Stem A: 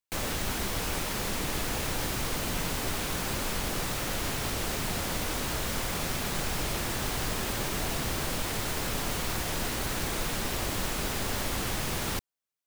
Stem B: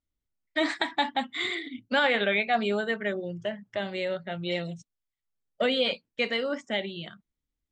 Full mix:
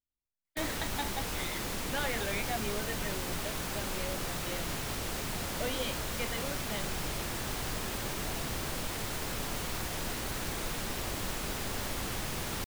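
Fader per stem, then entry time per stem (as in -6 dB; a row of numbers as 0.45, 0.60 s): -4.5, -11.5 dB; 0.45, 0.00 s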